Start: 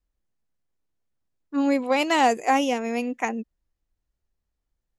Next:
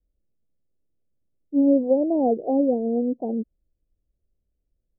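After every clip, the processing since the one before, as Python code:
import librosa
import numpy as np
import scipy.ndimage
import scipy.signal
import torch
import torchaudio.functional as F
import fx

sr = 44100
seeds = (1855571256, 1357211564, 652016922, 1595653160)

y = scipy.signal.sosfilt(scipy.signal.butter(8, 630.0, 'lowpass', fs=sr, output='sos'), x)
y = F.gain(torch.from_numpy(y), 4.5).numpy()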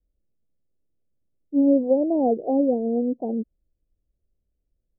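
y = x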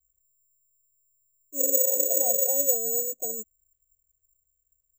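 y = fx.fixed_phaser(x, sr, hz=950.0, stages=6)
y = fx.spec_repair(y, sr, seeds[0], start_s=1.62, length_s=0.83, low_hz=320.0, high_hz=660.0, source='after')
y = (np.kron(scipy.signal.resample_poly(y, 1, 6), np.eye(6)[0]) * 6)[:len(y)]
y = F.gain(torch.from_numpy(y), -7.0).numpy()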